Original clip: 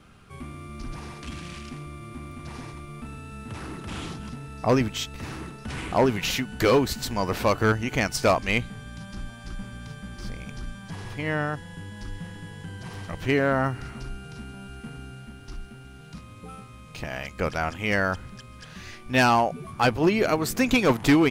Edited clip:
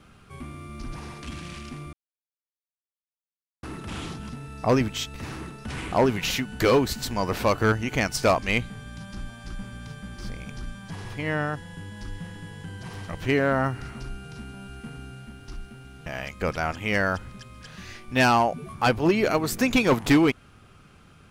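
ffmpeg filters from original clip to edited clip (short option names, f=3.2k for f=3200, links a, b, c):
-filter_complex "[0:a]asplit=4[a][b][c][d];[a]atrim=end=1.93,asetpts=PTS-STARTPTS,afade=t=out:st=1.926:d=0.004:c=hsin[e];[b]atrim=start=1.93:end=3.63,asetpts=PTS-STARTPTS,volume=0[f];[c]atrim=start=3.63:end=16.062,asetpts=PTS-STARTPTS,afade=t=in:d=0.004:c=hsin[g];[d]atrim=start=17.038[h];[e][f][g]concat=n=3:v=0:a=1[i];[i][h]acrossfade=d=0.004:c1=hsin:c2=hsin"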